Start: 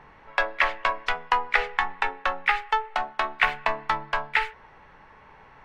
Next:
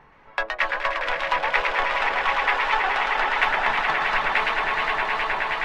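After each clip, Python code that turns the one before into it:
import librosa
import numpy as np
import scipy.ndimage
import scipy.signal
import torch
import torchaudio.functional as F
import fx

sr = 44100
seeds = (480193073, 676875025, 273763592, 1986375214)

y = fx.echo_swell(x, sr, ms=105, loudest=8, wet_db=-7)
y = fx.dereverb_blind(y, sr, rt60_s=0.56)
y = fx.echo_warbled(y, sr, ms=115, feedback_pct=67, rate_hz=2.8, cents=216, wet_db=-4.5)
y = y * librosa.db_to_amplitude(-2.0)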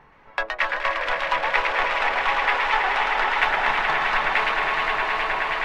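y = x + 10.0 ** (-8.0 / 20.0) * np.pad(x, (int(263 * sr / 1000.0), 0))[:len(x)]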